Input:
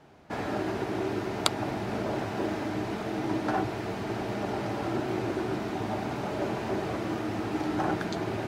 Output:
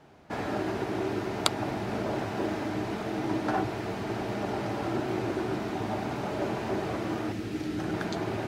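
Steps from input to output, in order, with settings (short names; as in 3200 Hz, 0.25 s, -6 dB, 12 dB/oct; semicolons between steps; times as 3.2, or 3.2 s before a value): 7.32–7.94 bell 890 Hz -13 dB 1.4 oct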